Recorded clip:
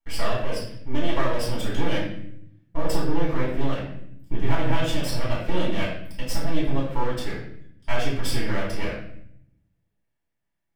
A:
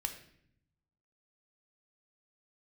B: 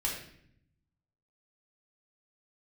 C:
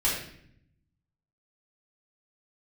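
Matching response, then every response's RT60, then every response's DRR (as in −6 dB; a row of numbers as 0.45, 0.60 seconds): C; 0.65, 0.65, 0.65 seconds; 5.0, −4.0, −8.0 decibels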